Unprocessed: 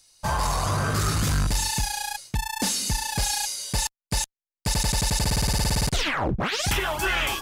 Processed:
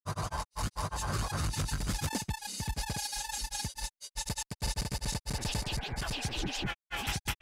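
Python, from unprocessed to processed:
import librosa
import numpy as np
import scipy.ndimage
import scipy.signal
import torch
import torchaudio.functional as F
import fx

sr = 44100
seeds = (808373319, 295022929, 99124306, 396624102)

y = fx.tremolo_shape(x, sr, shape='saw_up', hz=0.73, depth_pct=35)
y = fx.spec_repair(y, sr, seeds[0], start_s=5.93, length_s=0.7, low_hz=410.0, high_hz=2400.0, source='both')
y = fx.granulator(y, sr, seeds[1], grain_ms=100.0, per_s=20.0, spray_ms=832.0, spread_st=0)
y = F.gain(torch.from_numpy(y), -6.0).numpy()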